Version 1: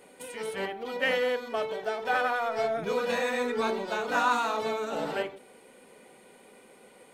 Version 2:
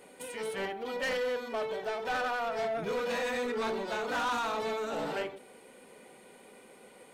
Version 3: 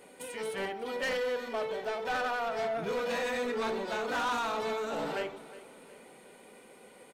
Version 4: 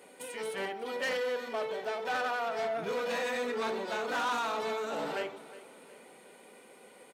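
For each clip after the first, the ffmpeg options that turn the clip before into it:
-af "asoftclip=type=tanh:threshold=0.0398"
-af "aecho=1:1:363|726|1089|1452:0.133|0.0587|0.0258|0.0114"
-af "highpass=f=210:p=1"

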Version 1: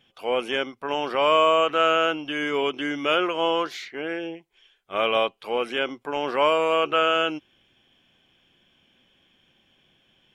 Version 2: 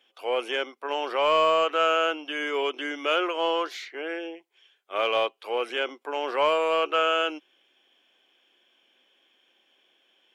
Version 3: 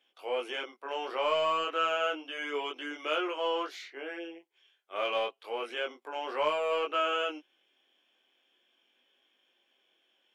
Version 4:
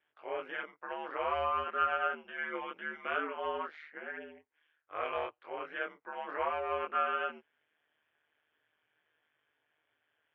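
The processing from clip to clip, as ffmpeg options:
-af "highpass=f=330:w=0.5412,highpass=f=330:w=1.3066,acontrast=58,volume=0.398"
-af "flanger=delay=19.5:depth=4.6:speed=0.32,volume=0.668"
-af "aeval=exprs='val(0)*sin(2*PI*77*n/s)':c=same,lowpass=f=1700:t=q:w=2.5,lowshelf=f=140:t=q:w=3:g=7,volume=0.708"

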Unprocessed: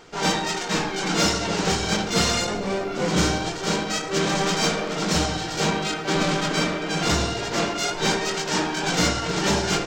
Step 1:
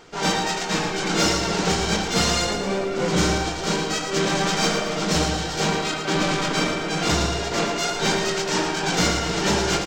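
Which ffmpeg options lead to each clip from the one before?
-af "aecho=1:1:113|226|339|452|565|678:0.422|0.211|0.105|0.0527|0.0264|0.0132"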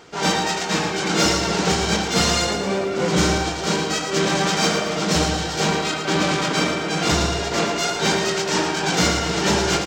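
-af "highpass=44,volume=1.26"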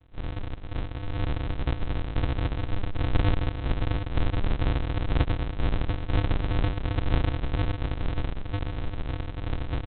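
-af "dynaudnorm=f=330:g=11:m=3.76,aresample=8000,acrusher=samples=40:mix=1:aa=0.000001,aresample=44100,volume=0.398"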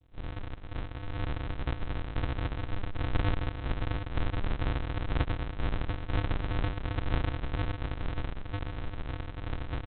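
-af "adynamicequalizer=threshold=0.00398:dfrequency=1500:dqfactor=0.85:tfrequency=1500:tqfactor=0.85:attack=5:release=100:ratio=0.375:range=2:mode=boostabove:tftype=bell,volume=0.531"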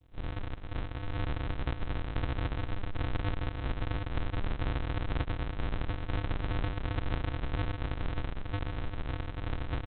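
-af "acompressor=threshold=0.0355:ratio=6,volume=1.19"

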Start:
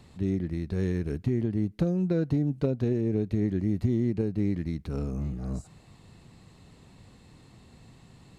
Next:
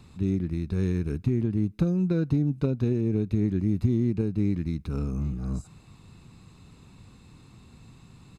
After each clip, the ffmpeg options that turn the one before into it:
-af "aecho=1:1:0.8:0.43"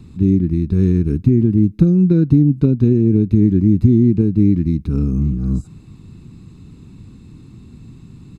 -af "lowshelf=f=440:t=q:w=1.5:g=9.5,volume=1.19"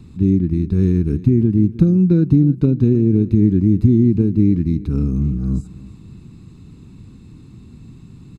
-af "aecho=1:1:309|618|927:0.126|0.039|0.0121,volume=0.891"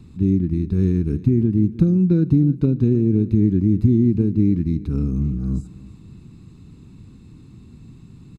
-af "aecho=1:1:74|148|222|296:0.0631|0.0379|0.0227|0.0136,volume=0.708"

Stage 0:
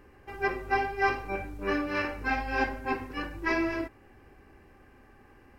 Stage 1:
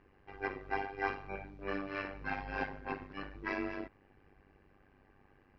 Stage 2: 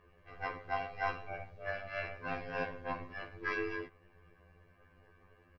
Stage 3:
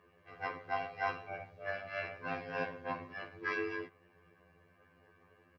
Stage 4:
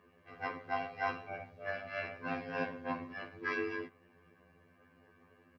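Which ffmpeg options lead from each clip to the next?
-af "lowpass=f=4700:w=0.5412,lowpass=f=4700:w=1.3066,tremolo=f=98:d=0.857,volume=0.531"
-af "aecho=1:1:1.8:0.57,afftfilt=real='re*2*eq(mod(b,4),0)':imag='im*2*eq(mod(b,4),0)':win_size=2048:overlap=0.75,volume=1.41"
-af "highpass=f=100:w=0.5412,highpass=f=100:w=1.3066"
-af "equalizer=f=240:w=4.9:g=10.5"

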